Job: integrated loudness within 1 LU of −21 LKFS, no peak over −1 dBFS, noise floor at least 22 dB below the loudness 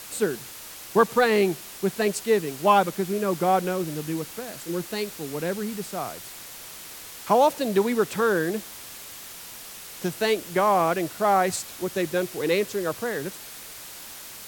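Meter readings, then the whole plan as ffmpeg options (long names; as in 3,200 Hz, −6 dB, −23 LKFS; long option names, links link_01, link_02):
background noise floor −41 dBFS; target noise floor −47 dBFS; integrated loudness −25.0 LKFS; sample peak −6.5 dBFS; target loudness −21.0 LKFS
→ -af "afftdn=noise_reduction=6:noise_floor=-41"
-af "volume=4dB"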